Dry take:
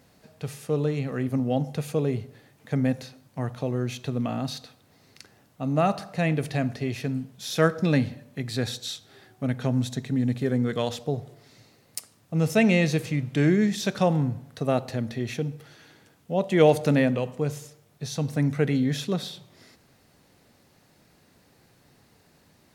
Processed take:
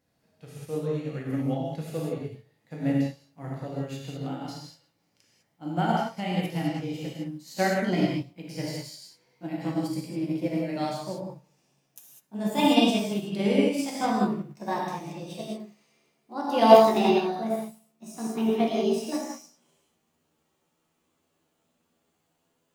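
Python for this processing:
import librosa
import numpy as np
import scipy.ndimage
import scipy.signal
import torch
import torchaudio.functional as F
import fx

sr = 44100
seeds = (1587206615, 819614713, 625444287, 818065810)

y = fx.pitch_glide(x, sr, semitones=9.0, runs='starting unshifted')
y = fx.rev_gated(y, sr, seeds[0], gate_ms=230, shape='flat', drr_db=-4.5)
y = fx.upward_expand(y, sr, threshold_db=-41.0, expansion=1.5)
y = F.gain(torch.from_numpy(y), -1.5).numpy()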